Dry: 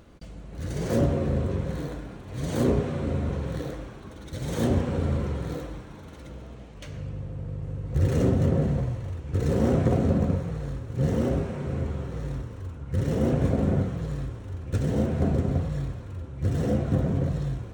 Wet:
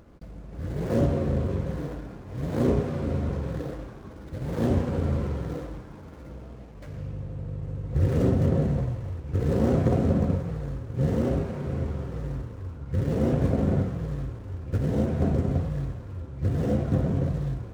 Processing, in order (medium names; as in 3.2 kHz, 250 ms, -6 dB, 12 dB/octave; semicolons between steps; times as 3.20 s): median filter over 15 samples